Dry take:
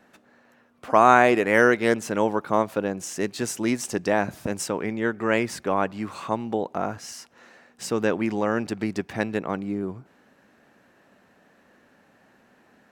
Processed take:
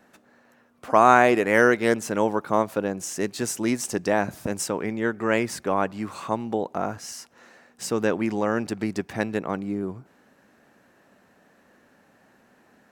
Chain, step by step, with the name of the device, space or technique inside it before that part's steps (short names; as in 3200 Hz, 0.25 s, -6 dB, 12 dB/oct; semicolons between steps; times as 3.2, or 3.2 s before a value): exciter from parts (in parallel at -6 dB: HPF 2900 Hz 12 dB/oct + soft clip -24 dBFS, distortion -15 dB + HPF 4100 Hz 6 dB/oct)